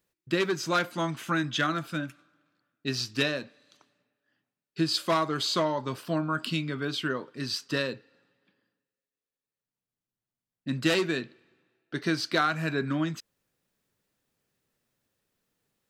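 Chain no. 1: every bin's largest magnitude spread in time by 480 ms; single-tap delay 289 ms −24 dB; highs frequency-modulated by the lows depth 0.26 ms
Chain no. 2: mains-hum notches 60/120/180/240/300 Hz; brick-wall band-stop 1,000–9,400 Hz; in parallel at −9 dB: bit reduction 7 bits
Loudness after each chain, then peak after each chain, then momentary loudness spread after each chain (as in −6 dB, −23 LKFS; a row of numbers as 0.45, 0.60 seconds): −20.0, −30.0 LKFS; −2.5, −13.0 dBFS; 13, 10 LU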